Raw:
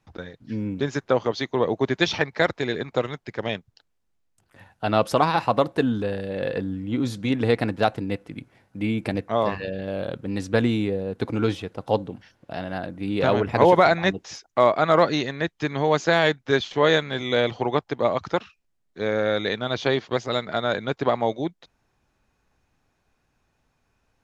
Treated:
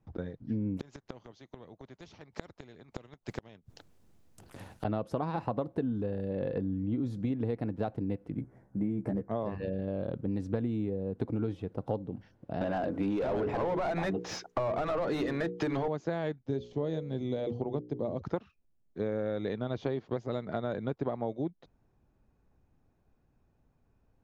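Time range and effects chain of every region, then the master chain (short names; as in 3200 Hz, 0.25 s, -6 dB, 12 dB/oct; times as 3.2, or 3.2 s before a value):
0.77–4.85 high shelf 2500 Hz +10 dB + flipped gate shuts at -17 dBFS, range -33 dB + spectral compressor 2:1
8.37–9.31 band shelf 3400 Hz -13 dB 1.2 oct + hard clip -15 dBFS + doubler 15 ms -3.5 dB
12.61–15.88 notches 60/120/180/240/300/360/420/480 Hz + compressor, threshold -21 dBFS + overdrive pedal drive 26 dB, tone 4600 Hz, clips at -9 dBFS
16.44–18.22 bell 1500 Hz -13.5 dB 2 oct + notches 60/120/180/240/300/360/420/480/540 Hz
whole clip: tilt shelf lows +9.5 dB; compressor 6:1, threshold -22 dBFS; gain -7 dB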